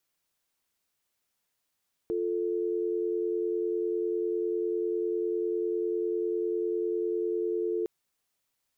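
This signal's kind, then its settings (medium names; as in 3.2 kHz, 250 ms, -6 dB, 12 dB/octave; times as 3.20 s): call progress tone dial tone, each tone -29.5 dBFS 5.76 s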